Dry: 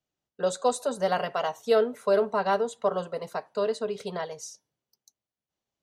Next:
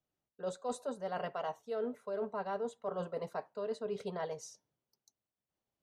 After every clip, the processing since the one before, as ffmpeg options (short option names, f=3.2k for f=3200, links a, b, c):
-af "highshelf=f=2.5k:g=-9.5,areverse,acompressor=threshold=-33dB:ratio=12,areverse,volume=-1dB"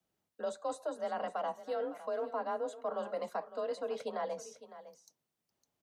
-filter_complex "[0:a]afreqshift=34,acrossover=split=410|1300[a][b][c];[a]acompressor=threshold=-55dB:ratio=4[d];[b]acompressor=threshold=-40dB:ratio=4[e];[c]acompressor=threshold=-56dB:ratio=4[f];[d][e][f]amix=inputs=3:normalize=0,aecho=1:1:557:0.188,volume=5.5dB"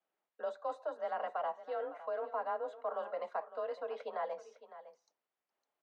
-af "highpass=550,lowpass=2.3k,volume=1dB"